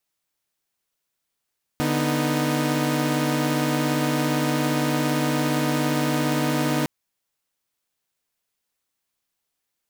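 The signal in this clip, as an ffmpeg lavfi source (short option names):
-f lavfi -i "aevalsrc='0.075*((2*mod(146.83*t,1)-1)+(2*mod(246.94*t,1)-1)+(2*mod(311.13*t,1)-1))':d=5.06:s=44100"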